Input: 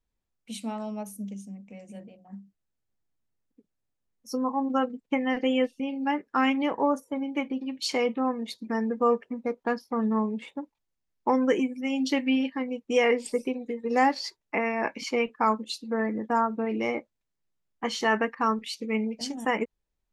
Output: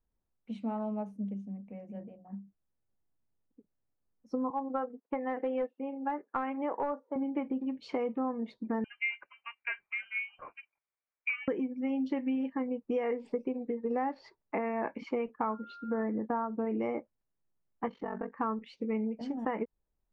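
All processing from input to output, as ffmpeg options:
ffmpeg -i in.wav -filter_complex "[0:a]asettb=1/sr,asplit=3[link_01][link_02][link_03];[link_01]atrim=end=4.504[link_04];[link_02]atrim=start=4.5:end=7.16,asetpts=PTS-STARTPTS,afade=type=in:duration=0.004:curve=qsin,afade=type=out:start_time=2.656:duration=0.004:curve=qsin,highpass=410,lowpass=2100,aeval=exprs='clip(val(0),-1,0.075)':channel_layout=same[link_05];[link_03]atrim=start=7.156[link_06];[link_04][link_05]acrossfade=duration=0.004:curve1=hsin:curve2=qsin[link_07];[link_07][link_06]acrossfade=duration=0.004:curve1=qsin:curve2=hsin,asettb=1/sr,asplit=3[link_08][link_09][link_10];[link_08]atrim=end=8.844[link_11];[link_09]atrim=start=8.84:end=11.48,asetpts=PTS-STARTPTS,afade=type=in:duration=0.004:curve=qsin,afade=type=out:start_time=2.636:duration=0.004:curve=qsin,highpass=frequency=980:width_type=q:width=3.5,lowpass=frequency=2800:width_type=q:width=0.5098,lowpass=frequency=2800:width_type=q:width=0.6013,lowpass=frequency=2800:width_type=q:width=0.9,lowpass=frequency=2800:width_type=q:width=2.563,afreqshift=-3300[link_12];[link_10]atrim=start=11.476[link_13];[link_11][link_12]acrossfade=duration=0.004:curve1=hsin:curve2=qsin[link_14];[link_14][link_13]acrossfade=duration=0.004:curve1=qsin:curve2=hsin,asettb=1/sr,asplit=3[link_15][link_16][link_17];[link_15]atrim=end=15.494[link_18];[link_16]atrim=start=15.49:end=16.03,asetpts=PTS-STARTPTS,afade=type=in:duration=0.004:curve=qsin,afade=type=out:start_time=0.536:duration=0.004:curve=qsin,lowpass=4100,aeval=exprs='val(0)+0.00708*sin(2*PI*1400*n/s)':channel_layout=same[link_19];[link_17]atrim=start=16.026[link_20];[link_18][link_19]acrossfade=duration=0.004:curve1=hsin:curve2=qsin[link_21];[link_21][link_20]acrossfade=duration=0.004:curve1=qsin:curve2=hsin,asettb=1/sr,asplit=3[link_22][link_23][link_24];[link_22]atrim=end=17.884[link_25];[link_23]atrim=start=17.88:end=18.35,asetpts=PTS-STARTPTS,afade=type=in:duration=0.004:curve=qsin,afade=type=out:start_time=0.466:duration=0.004:curve=qsin,aeval=exprs='val(0)*sin(2*PI*23*n/s)':channel_layout=same,acompressor=threshold=-32dB:ratio=3:attack=3.2:release=140:knee=1:detection=peak,lowpass=frequency=1200:poles=1[link_26];[link_24]atrim=start=18.346[link_27];[link_25][link_26]acrossfade=duration=0.004:curve1=hsin:curve2=qsin[link_28];[link_28][link_27]acrossfade=duration=0.004:curve1=qsin:curve2=hsin,lowpass=1300,acompressor=threshold=-29dB:ratio=6" out.wav

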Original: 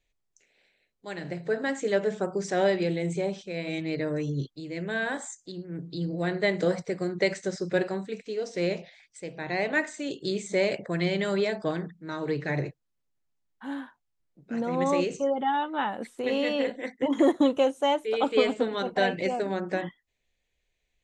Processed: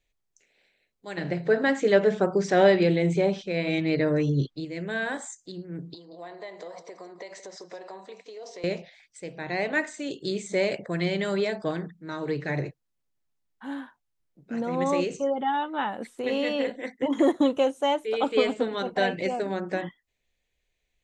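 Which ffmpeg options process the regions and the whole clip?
ffmpeg -i in.wav -filter_complex "[0:a]asettb=1/sr,asplit=3[link_01][link_02][link_03];[link_01]atrim=end=1.174[link_04];[link_02]atrim=start=1.17:end=4.65,asetpts=PTS-STARTPTS,afade=type=in:duration=0.004:curve=qsin,afade=type=out:start_time=3.476:duration=0.004:curve=qsin,lowpass=5000,acontrast=47[link_05];[link_03]atrim=start=4.646[link_06];[link_04][link_05]acrossfade=duration=0.004:curve1=hsin:curve2=qsin[link_07];[link_07][link_06]acrossfade=duration=0.004:curve1=qsin:curve2=hsin,asettb=1/sr,asplit=3[link_08][link_09][link_10];[link_08]atrim=end=5.944[link_11];[link_09]atrim=start=5.94:end=8.64,asetpts=PTS-STARTPTS,afade=type=in:duration=0.004:curve=qsin,afade=type=out:start_time=2.696:duration=0.004:curve=qsin,acompressor=threshold=-35dB:ratio=10:attack=3.2:release=140:knee=1:detection=peak,highpass=450,equalizer=frequency=700:width_type=q:width=4:gain=6,equalizer=frequency=1000:width_type=q:width=4:gain=10,equalizer=frequency=1500:width_type=q:width=4:gain=-7,equalizer=frequency=2500:width_type=q:width=4:gain=-4,lowpass=frequency=7300:width=0.5412,lowpass=frequency=7300:width=1.3066,aecho=1:1:175:0.2,atrim=end_sample=119070[link_12];[link_10]atrim=start=8.636[link_13];[link_11][link_12]acrossfade=duration=0.004:curve1=hsin:curve2=qsin[link_14];[link_14][link_13]acrossfade=duration=0.004:curve1=qsin:curve2=hsin" out.wav

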